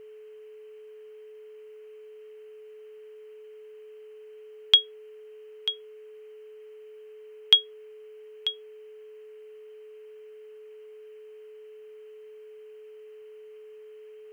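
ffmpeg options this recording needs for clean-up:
ffmpeg -i in.wav -af "bandreject=frequency=430:width=30,afftdn=noise_reduction=30:noise_floor=-47" out.wav

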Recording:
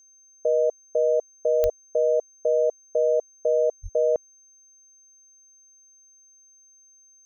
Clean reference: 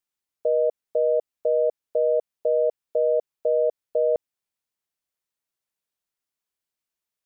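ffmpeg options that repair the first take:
ffmpeg -i in.wav -filter_complex "[0:a]adeclick=threshold=4,bandreject=frequency=6300:width=30,asplit=3[link_01][link_02][link_03];[link_01]afade=type=out:start_time=1.62:duration=0.02[link_04];[link_02]highpass=frequency=140:width=0.5412,highpass=frequency=140:width=1.3066,afade=type=in:start_time=1.62:duration=0.02,afade=type=out:start_time=1.74:duration=0.02[link_05];[link_03]afade=type=in:start_time=1.74:duration=0.02[link_06];[link_04][link_05][link_06]amix=inputs=3:normalize=0,asplit=3[link_07][link_08][link_09];[link_07]afade=type=out:start_time=3.82:duration=0.02[link_10];[link_08]highpass=frequency=140:width=0.5412,highpass=frequency=140:width=1.3066,afade=type=in:start_time=3.82:duration=0.02,afade=type=out:start_time=3.94:duration=0.02[link_11];[link_09]afade=type=in:start_time=3.94:duration=0.02[link_12];[link_10][link_11][link_12]amix=inputs=3:normalize=0" out.wav

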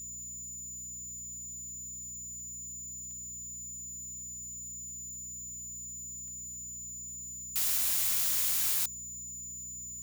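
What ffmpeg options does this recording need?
ffmpeg -i in.wav -af "adeclick=threshold=4,bandreject=frequency=60.9:width_type=h:width=4,bandreject=frequency=121.8:width_type=h:width=4,bandreject=frequency=182.7:width_type=h:width=4,bandreject=frequency=243.6:width_type=h:width=4,bandreject=frequency=7000:width=30,afftdn=noise_reduction=30:noise_floor=-43" out.wav

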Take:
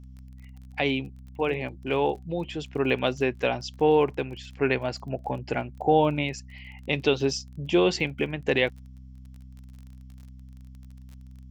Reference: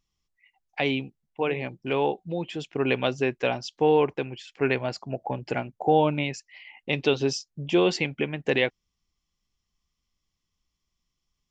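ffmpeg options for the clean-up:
ffmpeg -i in.wav -af "adeclick=threshold=4,bandreject=frequency=64.3:width_type=h:width=4,bandreject=frequency=128.6:width_type=h:width=4,bandreject=frequency=192.9:width_type=h:width=4,bandreject=frequency=257.2:width_type=h:width=4" out.wav

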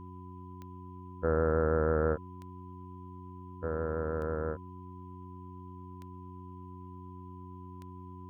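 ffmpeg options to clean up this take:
ffmpeg -i in.wav -af "adeclick=threshold=4,bandreject=frequency=91.3:width_type=h:width=4,bandreject=frequency=182.6:width_type=h:width=4,bandreject=frequency=273.9:width_type=h:width=4,bandreject=frequency=365.2:width_type=h:width=4,bandreject=frequency=1000:width=30,agate=range=-21dB:threshold=-39dB" out.wav

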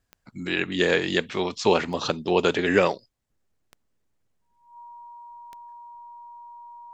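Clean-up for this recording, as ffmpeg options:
ffmpeg -i in.wav -af "adeclick=threshold=4,bandreject=frequency=950:width=30" out.wav

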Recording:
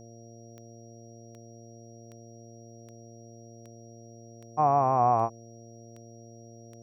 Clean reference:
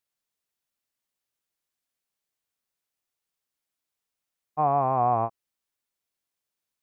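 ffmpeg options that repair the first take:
ffmpeg -i in.wav -af "adeclick=threshold=4,bandreject=frequency=115.3:width_type=h:width=4,bandreject=frequency=230.6:width_type=h:width=4,bandreject=frequency=345.9:width_type=h:width=4,bandreject=frequency=461.2:width_type=h:width=4,bandreject=frequency=576.5:width_type=h:width=4,bandreject=frequency=691.8:width_type=h:width=4,bandreject=frequency=5700:width=30" out.wav

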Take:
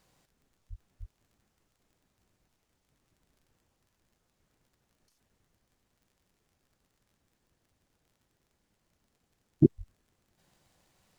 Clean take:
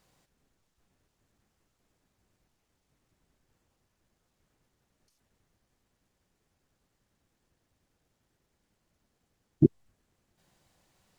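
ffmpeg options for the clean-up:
ffmpeg -i in.wav -filter_complex "[0:a]adeclick=threshold=4,asplit=3[link_01][link_02][link_03];[link_01]afade=type=out:start_time=0.69:duration=0.02[link_04];[link_02]highpass=frequency=140:width=0.5412,highpass=frequency=140:width=1.3066,afade=type=in:start_time=0.69:duration=0.02,afade=type=out:start_time=0.81:duration=0.02[link_05];[link_03]afade=type=in:start_time=0.81:duration=0.02[link_06];[link_04][link_05][link_06]amix=inputs=3:normalize=0,asplit=3[link_07][link_08][link_09];[link_07]afade=type=out:start_time=0.99:duration=0.02[link_10];[link_08]highpass=frequency=140:width=0.5412,highpass=frequency=140:width=1.3066,afade=type=in:start_time=0.99:duration=0.02,afade=type=out:start_time=1.11:duration=0.02[link_11];[link_09]afade=type=in:start_time=1.11:duration=0.02[link_12];[link_10][link_11][link_12]amix=inputs=3:normalize=0,asplit=3[link_13][link_14][link_15];[link_13]afade=type=out:start_time=9.77:duration=0.02[link_16];[link_14]highpass=frequency=140:width=0.5412,highpass=frequency=140:width=1.3066,afade=type=in:start_time=9.77:duration=0.02,afade=type=out:start_time=9.89:duration=0.02[link_17];[link_15]afade=type=in:start_time=9.89:duration=0.02[link_18];[link_16][link_17][link_18]amix=inputs=3:normalize=0" out.wav

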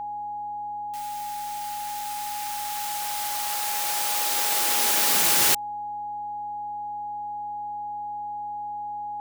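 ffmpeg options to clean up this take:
ffmpeg -i in.wav -af "bandreject=frequency=96:width_type=h:width=4,bandreject=frequency=192:width_type=h:width=4,bandreject=frequency=288:width_type=h:width=4,bandreject=frequency=830:width=30" out.wav

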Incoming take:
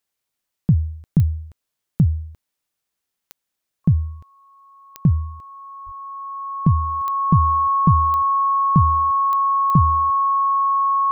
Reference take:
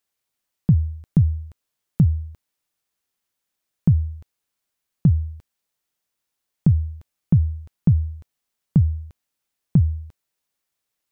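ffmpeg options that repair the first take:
ffmpeg -i in.wav -filter_complex "[0:a]adeclick=threshold=4,bandreject=frequency=1100:width=30,asplit=3[link_01][link_02][link_03];[link_01]afade=type=out:start_time=5.85:duration=0.02[link_04];[link_02]highpass=frequency=140:width=0.5412,highpass=frequency=140:width=1.3066,afade=type=in:start_time=5.85:duration=0.02,afade=type=out:start_time=5.97:duration=0.02[link_05];[link_03]afade=type=in:start_time=5.97:duration=0.02[link_06];[link_04][link_05][link_06]amix=inputs=3:normalize=0" out.wav

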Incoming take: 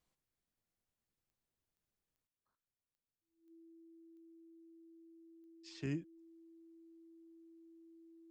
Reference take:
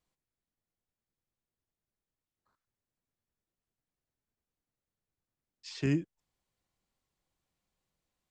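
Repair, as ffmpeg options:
ffmpeg -i in.wav -af "adeclick=threshold=4,bandreject=frequency=330:width=30,asetnsamples=nb_out_samples=441:pad=0,asendcmd='2.27 volume volume 10dB',volume=0dB" out.wav

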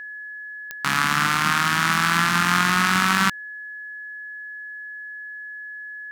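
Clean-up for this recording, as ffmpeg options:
ffmpeg -i in.wav -af "adeclick=threshold=4,bandreject=frequency=1700:width=30" out.wav

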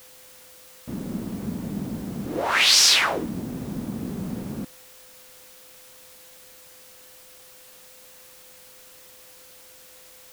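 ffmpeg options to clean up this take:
ffmpeg -i in.wav -af "bandreject=frequency=510:width=30,afwtdn=0.0035" out.wav

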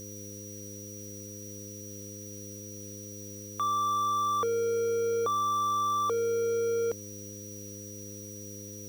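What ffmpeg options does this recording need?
ffmpeg -i in.wav -af "bandreject=frequency=102.3:width_type=h:width=4,bandreject=frequency=204.6:width_type=h:width=4,bandreject=frequency=306.9:width_type=h:width=4,bandreject=frequency=409.2:width_type=h:width=4,bandreject=frequency=511.5:width_type=h:width=4,bandreject=frequency=5800:width=30,afftdn=noise_reduction=30:noise_floor=-43" out.wav

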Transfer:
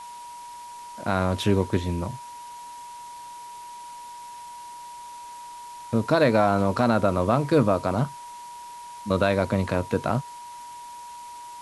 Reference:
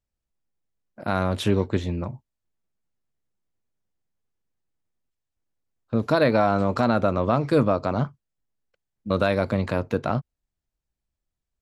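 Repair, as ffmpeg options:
ffmpeg -i in.wav -af "bandreject=frequency=960:width=30,afwtdn=0.004" out.wav

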